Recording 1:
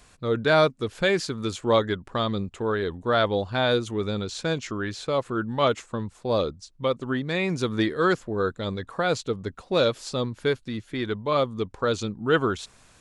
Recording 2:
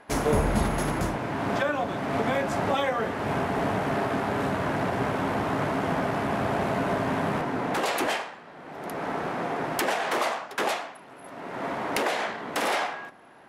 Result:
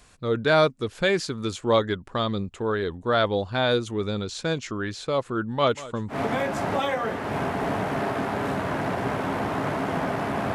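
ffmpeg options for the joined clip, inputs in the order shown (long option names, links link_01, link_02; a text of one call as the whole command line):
ffmpeg -i cue0.wav -i cue1.wav -filter_complex "[0:a]asettb=1/sr,asplit=3[link_01][link_02][link_03];[link_01]atrim=end=5.564[link_04];[link_02]atrim=start=5.56:end=6.16,asetpts=PTS-STARTPTS,afade=type=in:duration=0.004:curve=qsin,afade=type=out:start_time=0.596:duration=0.004:curve=qsin,aecho=1:1:189:0.133,atrim=end_sample=26460[link_05];[link_03]atrim=start=6.156[link_06];[link_04][link_05]acrossfade=duration=0.004:curve1=hsin:curve2=qsin[link_07];[link_07][link_06]acrossfade=duration=0.004:curve1=qsin:curve2=hsin,apad=whole_dur=10.54,atrim=end=10.54,atrim=end=6.16,asetpts=PTS-STARTPTS[link_08];[1:a]atrim=start=2.03:end=6.49,asetpts=PTS-STARTPTS[link_09];[link_08][link_09]acrossfade=duration=0.08:curve1=tri:curve2=tri" out.wav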